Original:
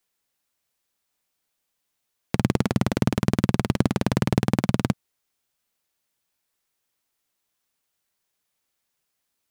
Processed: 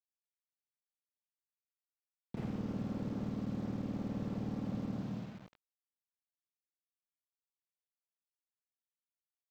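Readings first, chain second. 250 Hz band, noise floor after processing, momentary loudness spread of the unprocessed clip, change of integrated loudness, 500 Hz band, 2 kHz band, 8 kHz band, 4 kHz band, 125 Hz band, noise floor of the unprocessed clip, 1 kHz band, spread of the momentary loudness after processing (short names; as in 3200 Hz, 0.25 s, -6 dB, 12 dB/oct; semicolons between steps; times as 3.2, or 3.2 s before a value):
-13.5 dB, under -85 dBFS, 4 LU, -15.5 dB, -17.0 dB, -23.0 dB, under -25 dB, -23.5 dB, -16.5 dB, -79 dBFS, -19.5 dB, 6 LU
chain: downsampling 8000 Hz; short-mantissa float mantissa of 4-bit; limiter -9.5 dBFS, peak gain reduction 4.5 dB; treble ducked by the level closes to 1100 Hz, closed at -22.5 dBFS; Schroeder reverb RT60 0.94 s, combs from 26 ms, DRR 0.5 dB; soft clip -12.5 dBFS, distortion -15 dB; HPF 93 Hz 12 dB/oct; compressor 16:1, threshold -33 dBFS, peak gain reduction 15.5 dB; bit-crush 9-bit; slew limiter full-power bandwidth 6.1 Hz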